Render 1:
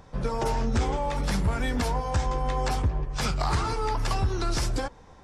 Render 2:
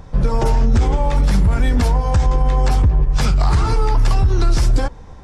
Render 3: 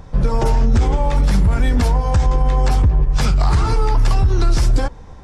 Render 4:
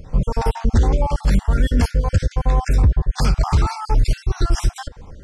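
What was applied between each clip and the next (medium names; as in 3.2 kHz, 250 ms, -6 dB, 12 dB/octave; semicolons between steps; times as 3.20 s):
bass shelf 120 Hz +9 dB; peak limiter -16 dBFS, peak gain reduction 6 dB; bass shelf 410 Hz +3 dB; trim +6 dB
no audible change
random holes in the spectrogram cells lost 36%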